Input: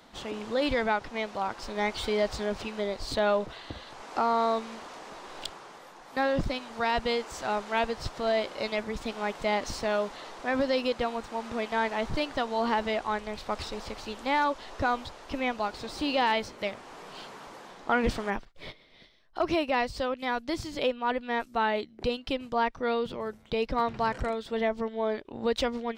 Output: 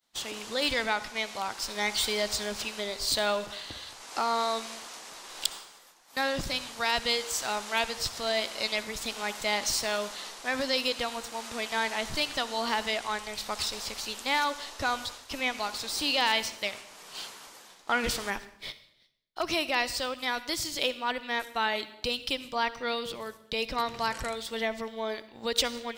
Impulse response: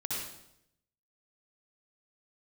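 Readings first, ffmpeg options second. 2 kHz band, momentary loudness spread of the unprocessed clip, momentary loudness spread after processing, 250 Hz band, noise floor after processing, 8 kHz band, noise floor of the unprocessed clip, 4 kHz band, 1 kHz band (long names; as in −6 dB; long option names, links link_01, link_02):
+2.0 dB, 13 LU, 11 LU, −6.0 dB, −56 dBFS, +12.5 dB, −53 dBFS, +7.5 dB, −2.5 dB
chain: -filter_complex "[0:a]crystalizer=i=9:c=0,agate=range=-33dB:threshold=-33dB:ratio=3:detection=peak,asplit=2[link_01][link_02];[1:a]atrim=start_sample=2205[link_03];[link_02][link_03]afir=irnorm=-1:irlink=0,volume=-16.5dB[link_04];[link_01][link_04]amix=inputs=2:normalize=0,volume=-7.5dB"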